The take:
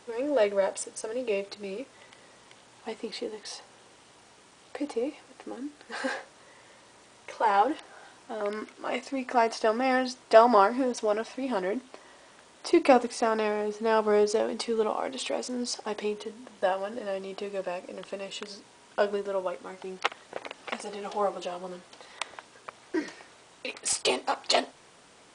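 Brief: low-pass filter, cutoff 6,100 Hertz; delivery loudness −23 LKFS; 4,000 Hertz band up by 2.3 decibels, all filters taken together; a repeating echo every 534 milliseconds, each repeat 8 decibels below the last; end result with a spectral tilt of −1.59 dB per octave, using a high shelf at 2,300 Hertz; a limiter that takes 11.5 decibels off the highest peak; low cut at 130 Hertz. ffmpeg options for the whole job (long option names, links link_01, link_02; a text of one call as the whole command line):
ffmpeg -i in.wav -af "highpass=130,lowpass=6100,highshelf=frequency=2300:gain=-4.5,equalizer=frequency=4000:width_type=o:gain=8,alimiter=limit=-16dB:level=0:latency=1,aecho=1:1:534|1068|1602|2136|2670:0.398|0.159|0.0637|0.0255|0.0102,volume=8dB" out.wav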